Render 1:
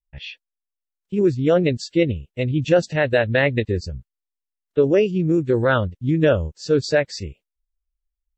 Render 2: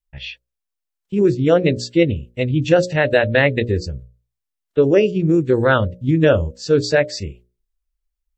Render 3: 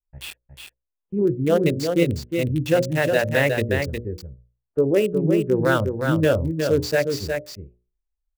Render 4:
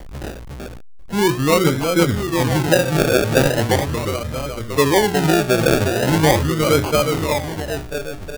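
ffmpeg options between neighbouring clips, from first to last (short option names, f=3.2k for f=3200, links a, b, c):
-af "bandreject=f=60:t=h:w=6,bandreject=f=120:t=h:w=6,bandreject=f=180:t=h:w=6,bandreject=f=240:t=h:w=6,bandreject=f=300:t=h:w=6,bandreject=f=360:t=h:w=6,bandreject=f=420:t=h:w=6,bandreject=f=480:t=h:w=6,bandreject=f=540:t=h:w=6,bandreject=f=600:t=h:w=6,volume=3.5dB"
-filter_complex "[0:a]acrossover=split=640|1300[a][b][c];[c]acrusher=bits=4:mix=0:aa=0.000001[d];[a][b][d]amix=inputs=3:normalize=0,aecho=1:1:361:0.531,volume=-5dB"
-filter_complex "[0:a]aeval=exprs='val(0)+0.5*0.0316*sgn(val(0))':c=same,asplit=2[a][b];[b]adelay=991.3,volume=-9dB,highshelf=f=4k:g=-22.3[c];[a][c]amix=inputs=2:normalize=0,acrusher=samples=34:mix=1:aa=0.000001:lfo=1:lforange=20.4:lforate=0.4,volume=2.5dB"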